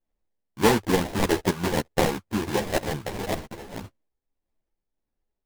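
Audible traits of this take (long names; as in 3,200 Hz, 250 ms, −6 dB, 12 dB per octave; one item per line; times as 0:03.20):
tremolo triangle 1.6 Hz, depth 55%
aliases and images of a low sample rate 1,300 Hz, jitter 20%
a shimmering, thickened sound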